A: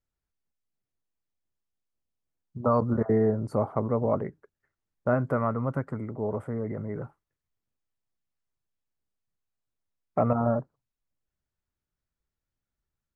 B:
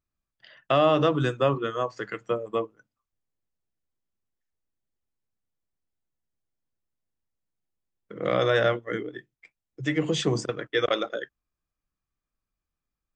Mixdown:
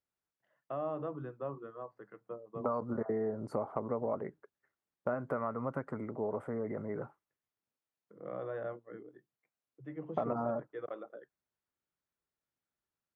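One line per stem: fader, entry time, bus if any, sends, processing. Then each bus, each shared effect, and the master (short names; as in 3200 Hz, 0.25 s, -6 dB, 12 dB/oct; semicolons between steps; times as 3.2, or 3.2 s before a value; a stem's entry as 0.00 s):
+0.5 dB, 0.00 s, no send, HPF 300 Hz 6 dB/oct; high shelf 3400 Hz -8.5 dB; compressor 6:1, threshold -31 dBFS, peak gain reduction 10.5 dB
-15.5 dB, 0.00 s, no send, Chebyshev band-pass 130–1000 Hz, order 2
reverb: off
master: low shelf 140 Hz -4 dB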